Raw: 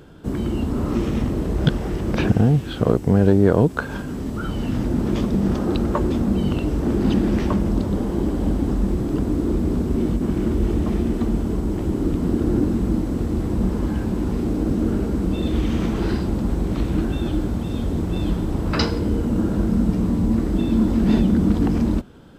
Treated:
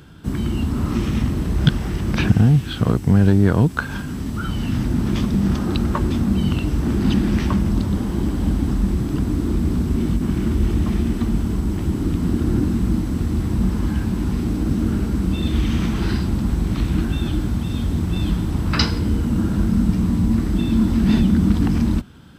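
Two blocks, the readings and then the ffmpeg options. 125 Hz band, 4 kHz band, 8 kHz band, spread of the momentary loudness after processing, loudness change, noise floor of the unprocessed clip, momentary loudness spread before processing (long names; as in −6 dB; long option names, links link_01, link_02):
+3.5 dB, +4.5 dB, can't be measured, 6 LU, +1.0 dB, −29 dBFS, 6 LU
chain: -af "highpass=47,equalizer=frequency=500:width=0.86:gain=-12.5,bandreject=frequency=6900:width=18,volume=5dB"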